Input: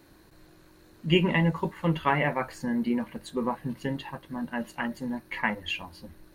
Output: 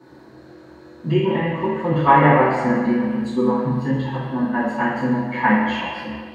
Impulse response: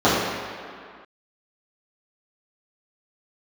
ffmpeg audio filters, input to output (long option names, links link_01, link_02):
-filter_complex "[0:a]asettb=1/sr,asplit=3[link_01][link_02][link_03];[link_01]atrim=end=1.124[link_04];[link_02]atrim=start=1.12:end=1.91,asetpts=PTS-STARTPTS,afade=type=in:duration=0.004:curve=qsin,afade=type=out:start_time=0.786:duration=0.004:curve=qsin,acompressor=threshold=-34dB:ratio=2[link_05];[link_03]atrim=start=1.906[link_06];[link_04][link_05]acrossfade=duration=0.004:curve1=hsin:curve2=qsin[link_07];[link_07][link_06]acrossfade=duration=0.004:curve1=qsin:curve2=hsin,asettb=1/sr,asplit=3[link_08][link_09][link_10];[link_08]atrim=end=2.734[link_11];[link_09]atrim=start=2.73:end=4.14,asetpts=PTS-STARTPTS,afade=type=in:duration=0.004:curve=qsin,afade=type=out:start_time=1.406:duration=0.004:curve=qsin,equalizer=frequency=640:width_type=o:width=1.9:gain=-8[link_12];[link_10]atrim=start=4.136[link_13];[link_11][link_12]acrossfade=duration=0.004:curve1=hsin:curve2=qsin[link_14];[link_14][link_13]acrossfade=duration=0.004:curve1=qsin:curve2=hsin[link_15];[1:a]atrim=start_sample=2205,asetrate=52920,aresample=44100[link_16];[link_15][link_16]afir=irnorm=-1:irlink=0,volume=-13dB"